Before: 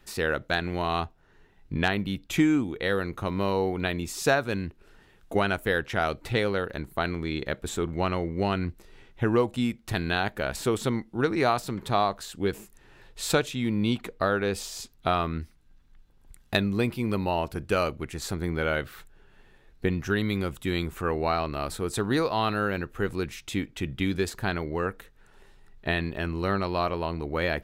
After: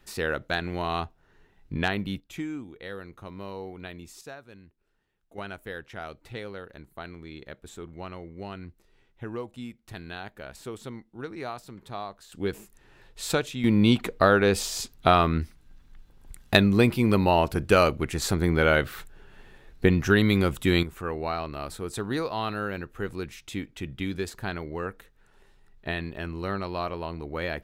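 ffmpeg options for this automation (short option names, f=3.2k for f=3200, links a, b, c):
-af "asetnsamples=n=441:p=0,asendcmd='2.2 volume volume -12dB;4.21 volume volume -20dB;5.38 volume volume -12dB;12.32 volume volume -2dB;13.64 volume volume 6dB;20.83 volume volume -4dB',volume=-1.5dB"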